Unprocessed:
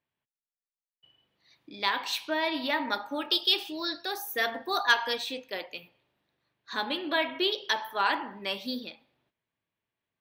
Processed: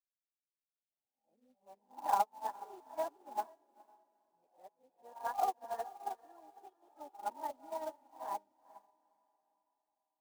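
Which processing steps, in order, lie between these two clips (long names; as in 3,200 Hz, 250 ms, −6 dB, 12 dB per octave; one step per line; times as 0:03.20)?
played backwards from end to start
dynamic equaliser 340 Hz, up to −7 dB, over −45 dBFS, Q 0.71
transistor ladder low-pass 860 Hz, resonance 70%
floating-point word with a short mantissa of 2 bits
feedback delay with all-pass diffusion 454 ms, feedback 45%, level −7 dB
expander for the loud parts 2.5 to 1, over −51 dBFS
level +6.5 dB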